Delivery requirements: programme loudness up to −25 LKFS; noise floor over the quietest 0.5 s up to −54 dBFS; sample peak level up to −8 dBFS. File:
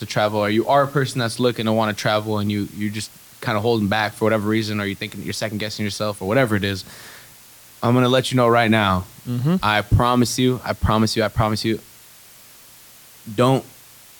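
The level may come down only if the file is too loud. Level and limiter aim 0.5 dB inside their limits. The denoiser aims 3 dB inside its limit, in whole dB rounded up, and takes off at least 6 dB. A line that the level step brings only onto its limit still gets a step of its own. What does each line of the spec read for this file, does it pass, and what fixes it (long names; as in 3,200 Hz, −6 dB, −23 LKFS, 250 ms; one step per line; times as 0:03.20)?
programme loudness −20.0 LKFS: out of spec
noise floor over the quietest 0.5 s −46 dBFS: out of spec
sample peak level −5.0 dBFS: out of spec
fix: broadband denoise 6 dB, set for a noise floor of −46 dBFS
level −5.5 dB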